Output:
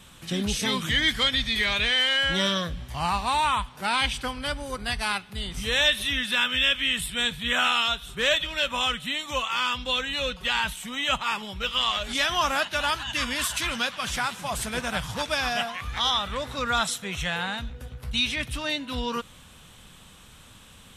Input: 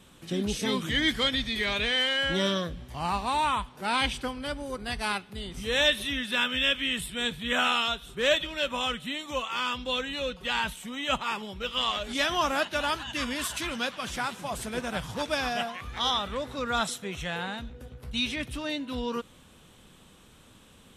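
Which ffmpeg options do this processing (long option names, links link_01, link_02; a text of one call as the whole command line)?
ffmpeg -i in.wav -filter_complex "[0:a]equalizer=frequency=350:width=0.76:gain=-9,asplit=2[link_01][link_02];[link_02]alimiter=limit=-23.5dB:level=0:latency=1:release=310,volume=2dB[link_03];[link_01][link_03]amix=inputs=2:normalize=0" out.wav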